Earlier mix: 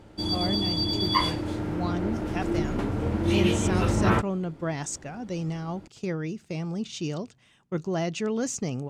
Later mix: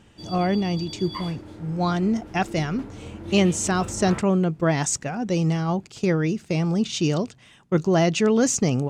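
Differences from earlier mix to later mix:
speech +9.0 dB; background -11.0 dB

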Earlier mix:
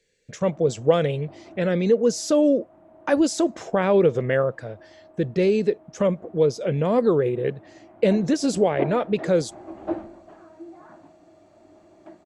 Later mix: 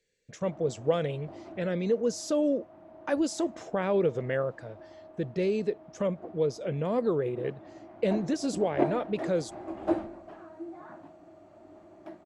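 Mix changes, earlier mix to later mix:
speech -8.0 dB; background: remove distance through air 180 m

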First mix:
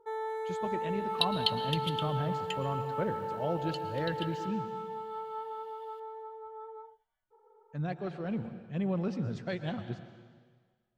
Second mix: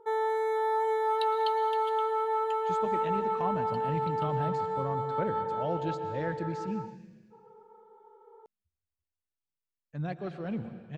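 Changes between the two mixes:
speech: entry +2.20 s; first sound +7.0 dB; second sound -12.0 dB

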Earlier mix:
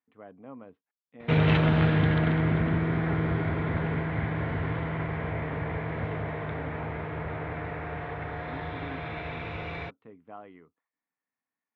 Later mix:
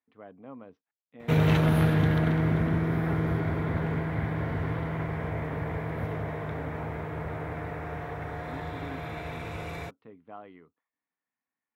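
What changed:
background: add treble shelf 2.6 kHz -8.5 dB; master: remove low-pass 3.4 kHz 24 dB/octave

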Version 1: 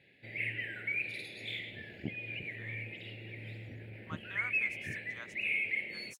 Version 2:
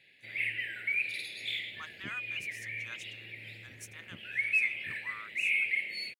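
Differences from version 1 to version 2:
speech: entry -2.30 s; master: add tilt shelf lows -8.5 dB, about 1.4 kHz

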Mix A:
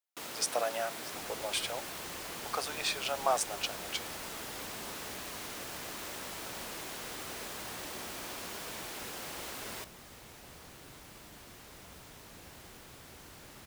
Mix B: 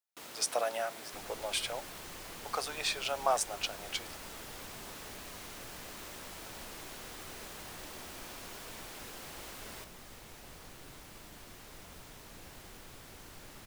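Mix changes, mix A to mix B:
first sound -5.5 dB; master: remove high-pass 41 Hz

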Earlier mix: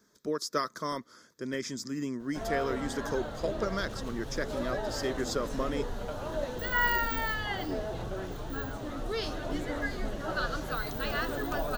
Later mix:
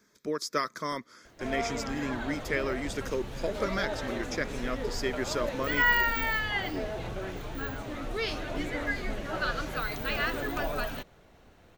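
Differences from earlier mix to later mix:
background: entry -0.95 s; master: add peaking EQ 2.3 kHz +10.5 dB 0.56 oct

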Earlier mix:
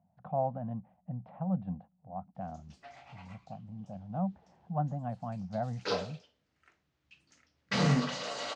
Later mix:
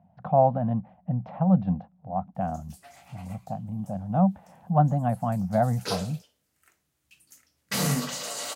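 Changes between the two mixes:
speech +11.5 dB; master: remove Bessel low-pass 3.7 kHz, order 6

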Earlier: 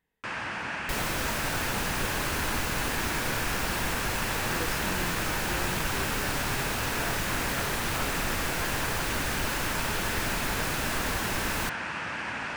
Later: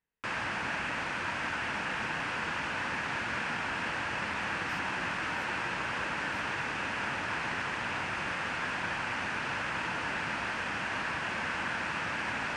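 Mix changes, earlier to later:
speech -11.5 dB; second sound: muted

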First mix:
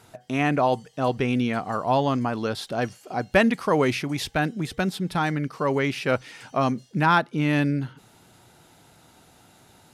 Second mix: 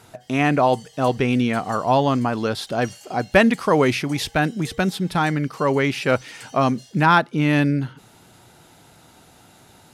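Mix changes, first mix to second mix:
speech +4.0 dB; background +11.0 dB

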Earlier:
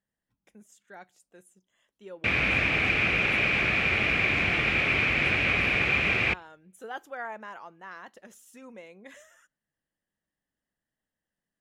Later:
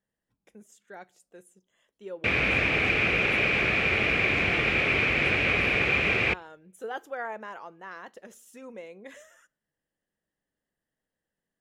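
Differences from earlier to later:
speech: send +6.0 dB; master: add peaking EQ 450 Hz +5.5 dB 0.76 oct

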